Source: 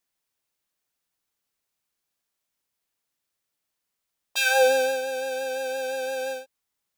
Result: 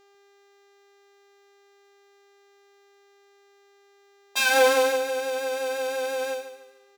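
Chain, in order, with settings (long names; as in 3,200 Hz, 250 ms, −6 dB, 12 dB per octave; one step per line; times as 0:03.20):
harmonic generator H 6 −17 dB, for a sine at −8 dBFS
high-pass filter 220 Hz 12 dB per octave
hum with harmonics 400 Hz, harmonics 19, −59 dBFS −6 dB per octave
on a send: repeating echo 147 ms, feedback 36%, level −11.5 dB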